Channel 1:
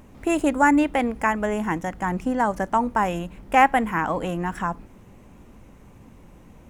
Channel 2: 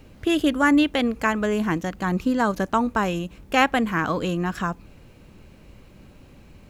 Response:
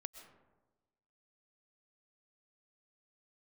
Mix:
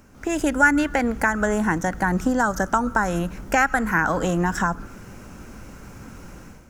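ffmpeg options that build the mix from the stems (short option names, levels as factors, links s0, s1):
-filter_complex "[0:a]acrossover=split=130[s0][s1];[s1]acompressor=threshold=0.0562:ratio=6[s2];[s0][s2]amix=inputs=2:normalize=0,volume=0.631,asplit=2[s3][s4];[1:a]highpass=f=1400:t=q:w=8.3,highshelf=f=4600:t=q:w=3:g=8,volume=0.299,asplit=2[s5][s6];[s6]volume=0.2[s7];[s4]apad=whole_len=295141[s8];[s5][s8]sidechaincompress=threshold=0.0126:ratio=8:attack=16:release=277[s9];[2:a]atrim=start_sample=2205[s10];[s7][s10]afir=irnorm=-1:irlink=0[s11];[s3][s9][s11]amix=inputs=3:normalize=0,dynaudnorm=f=120:g=5:m=3.55"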